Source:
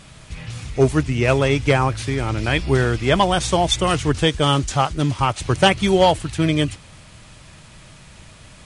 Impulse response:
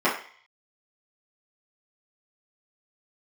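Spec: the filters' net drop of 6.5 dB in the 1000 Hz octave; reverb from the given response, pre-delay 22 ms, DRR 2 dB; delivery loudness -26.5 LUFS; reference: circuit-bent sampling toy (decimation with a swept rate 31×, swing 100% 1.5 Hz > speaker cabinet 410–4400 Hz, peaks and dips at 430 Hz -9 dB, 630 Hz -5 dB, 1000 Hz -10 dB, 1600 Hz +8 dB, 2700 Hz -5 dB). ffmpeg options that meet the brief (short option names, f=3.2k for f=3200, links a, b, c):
-filter_complex "[0:a]equalizer=f=1k:t=o:g=-3.5,asplit=2[a][b];[1:a]atrim=start_sample=2205,adelay=22[c];[b][c]afir=irnorm=-1:irlink=0,volume=-19dB[d];[a][d]amix=inputs=2:normalize=0,acrusher=samples=31:mix=1:aa=0.000001:lfo=1:lforange=31:lforate=1.5,highpass=410,equalizer=f=430:t=q:w=4:g=-9,equalizer=f=630:t=q:w=4:g=-5,equalizer=f=1k:t=q:w=4:g=-10,equalizer=f=1.6k:t=q:w=4:g=8,equalizer=f=2.7k:t=q:w=4:g=-5,lowpass=f=4.4k:w=0.5412,lowpass=f=4.4k:w=1.3066,volume=-4dB"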